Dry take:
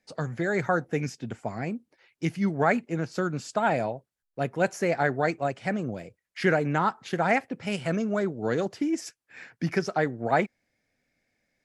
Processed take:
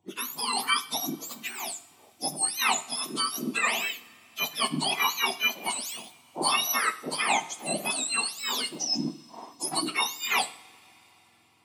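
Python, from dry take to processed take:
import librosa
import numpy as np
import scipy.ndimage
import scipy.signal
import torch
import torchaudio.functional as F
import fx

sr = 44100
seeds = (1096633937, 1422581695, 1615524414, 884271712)

y = fx.octave_mirror(x, sr, pivot_hz=1300.0)
y = fx.rev_double_slope(y, sr, seeds[0], early_s=0.51, late_s=4.3, knee_db=-20, drr_db=11.0)
y = F.gain(torch.from_numpy(y), 3.0).numpy()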